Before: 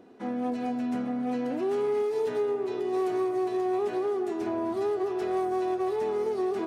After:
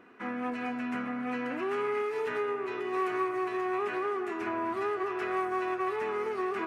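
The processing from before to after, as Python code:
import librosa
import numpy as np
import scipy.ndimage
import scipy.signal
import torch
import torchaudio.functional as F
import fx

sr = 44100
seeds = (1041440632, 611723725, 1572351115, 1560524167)

y = fx.band_shelf(x, sr, hz=1700.0, db=14.0, octaves=1.7)
y = y * librosa.db_to_amplitude(-5.0)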